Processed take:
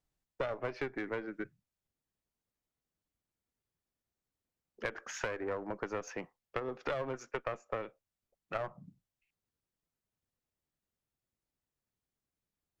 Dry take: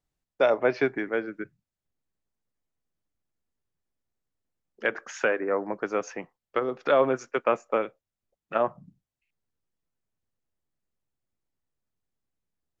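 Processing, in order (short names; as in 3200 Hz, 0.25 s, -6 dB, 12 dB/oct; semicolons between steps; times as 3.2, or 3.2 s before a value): one diode to ground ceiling -25.5 dBFS; compressor 6:1, threshold -31 dBFS, peak gain reduction 12 dB; gain -2 dB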